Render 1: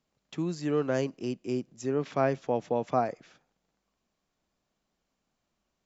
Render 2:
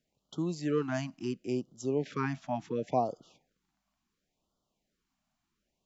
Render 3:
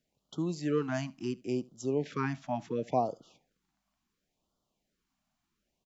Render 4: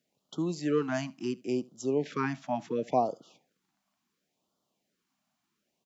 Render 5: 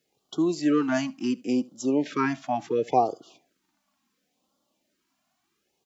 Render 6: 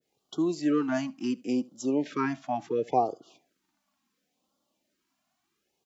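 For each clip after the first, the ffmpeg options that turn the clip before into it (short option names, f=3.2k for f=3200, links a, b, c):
-af "afftfilt=real='re*(1-between(b*sr/1024,400*pow(2100/400,0.5+0.5*sin(2*PI*0.71*pts/sr))/1.41,400*pow(2100/400,0.5+0.5*sin(2*PI*0.71*pts/sr))*1.41))':imag='im*(1-between(b*sr/1024,400*pow(2100/400,0.5+0.5*sin(2*PI*0.71*pts/sr))/1.41,400*pow(2100/400,0.5+0.5*sin(2*PI*0.71*pts/sr))*1.41))':win_size=1024:overlap=0.75,volume=-1.5dB"
-af "aecho=1:1:75:0.0631"
-af "highpass=160,volume=2.5dB"
-af "flanger=delay=2.3:depth=1.7:regen=20:speed=0.35:shape=triangular,volume=9dB"
-af "adynamicequalizer=threshold=0.01:dfrequency=1500:dqfactor=0.7:tfrequency=1500:tqfactor=0.7:attack=5:release=100:ratio=0.375:range=2.5:mode=cutabove:tftype=highshelf,volume=-3dB"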